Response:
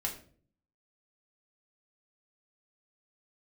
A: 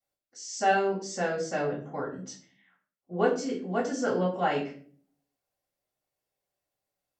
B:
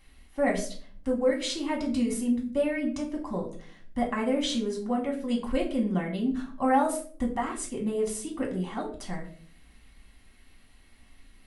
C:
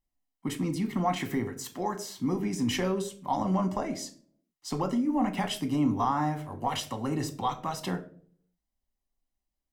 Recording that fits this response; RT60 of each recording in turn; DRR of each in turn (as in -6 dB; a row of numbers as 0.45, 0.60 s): B; 0.45, 0.45, 0.50 s; -9.5, -2.0, 5.5 dB